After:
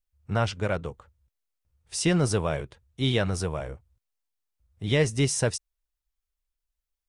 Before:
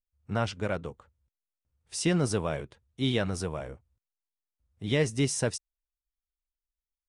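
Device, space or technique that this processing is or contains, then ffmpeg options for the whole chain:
low shelf boost with a cut just above: -af "lowshelf=f=78:g=6,equalizer=f=250:t=o:w=0.81:g=-4,volume=3.5dB"

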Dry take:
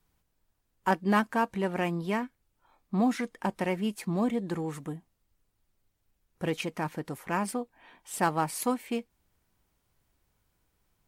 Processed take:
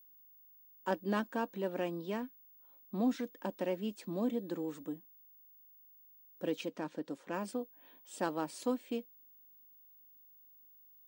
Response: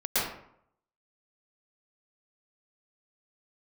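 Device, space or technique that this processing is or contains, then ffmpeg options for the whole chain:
old television with a line whistle: -filter_complex "[0:a]highpass=f=190:w=0.5412,highpass=f=190:w=1.3066,equalizer=f=290:t=q:w=4:g=8,equalizer=f=540:t=q:w=4:g=7,equalizer=f=800:t=q:w=4:g=-5,equalizer=f=1.2k:t=q:w=4:g=-4,equalizer=f=2.1k:t=q:w=4:g=-8,equalizer=f=3.6k:t=q:w=4:g=4,lowpass=f=8.1k:w=0.5412,lowpass=f=8.1k:w=1.3066,aeval=exprs='val(0)+0.00316*sin(2*PI*15625*n/s)':c=same,asettb=1/sr,asplit=3[a][b][c];[a]atrim=end=6.684[d];[b]atrim=start=6.68:end=7.34,asetpts=PTS-STARTPTS,afade=t=in:d=0.004:c=qsin,afade=t=out:st=0.656:d=0.004:c=qsin,lowpass=10k[e];[c]atrim=start=7.336[f];[d][e]acrossfade=d=0.004:c1=hsin:c2=qsin[g];[g][f]acrossfade=d=0.004:c1=qsin:c2=hsin,volume=-8dB"

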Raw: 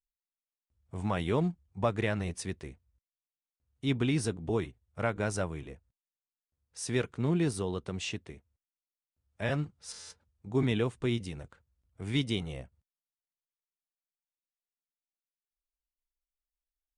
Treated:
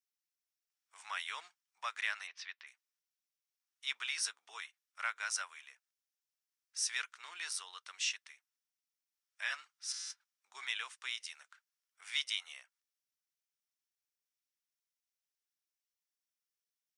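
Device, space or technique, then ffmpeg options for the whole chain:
headphones lying on a table: -filter_complex "[0:a]highpass=f=1.3k:w=0.5412,highpass=f=1.3k:w=1.3066,equalizer=f=5.6k:t=o:w=0.28:g=7.5,asplit=3[a][b][c];[a]afade=t=out:st=2.26:d=0.02[d];[b]lowpass=f=4.1k:w=0.5412,lowpass=f=4.1k:w=1.3066,afade=t=in:st=2.26:d=0.02,afade=t=out:st=2.66:d=0.02[e];[c]afade=t=in:st=2.66:d=0.02[f];[d][e][f]amix=inputs=3:normalize=0,volume=1dB"

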